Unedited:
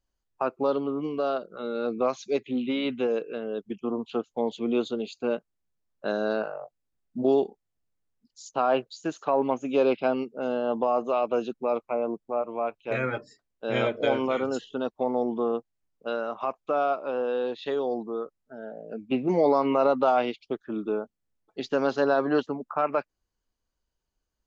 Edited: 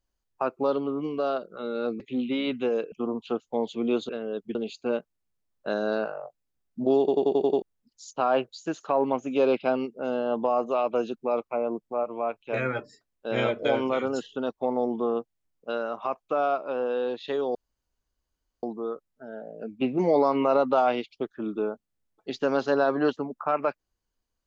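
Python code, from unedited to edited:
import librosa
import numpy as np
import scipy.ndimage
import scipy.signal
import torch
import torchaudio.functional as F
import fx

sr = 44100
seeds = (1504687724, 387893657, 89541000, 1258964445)

y = fx.edit(x, sr, fx.cut(start_s=2.0, length_s=0.38),
    fx.move(start_s=3.3, length_s=0.46, to_s=4.93),
    fx.stutter_over(start_s=7.37, slice_s=0.09, count=7),
    fx.insert_room_tone(at_s=17.93, length_s=1.08), tone=tone)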